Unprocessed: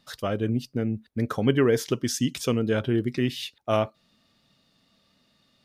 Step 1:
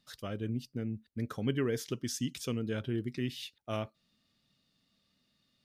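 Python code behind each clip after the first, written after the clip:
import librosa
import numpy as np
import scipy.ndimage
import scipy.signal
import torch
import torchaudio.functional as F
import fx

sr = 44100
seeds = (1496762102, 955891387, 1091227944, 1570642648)

y = fx.peak_eq(x, sr, hz=760.0, db=-6.5, octaves=2.0)
y = y * 10.0 ** (-8.0 / 20.0)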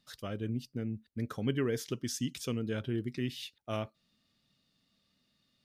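y = x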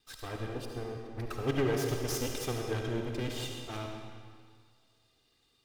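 y = fx.lower_of_two(x, sr, delay_ms=2.5)
y = fx.rev_freeverb(y, sr, rt60_s=1.9, hf_ratio=0.9, predelay_ms=30, drr_db=1.5)
y = y * 10.0 ** (3.0 / 20.0)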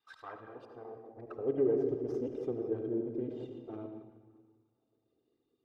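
y = fx.envelope_sharpen(x, sr, power=1.5)
y = fx.filter_sweep_bandpass(y, sr, from_hz=1100.0, to_hz=360.0, start_s=0.66, end_s=1.82, q=1.8)
y = y * 10.0 ** (3.0 / 20.0)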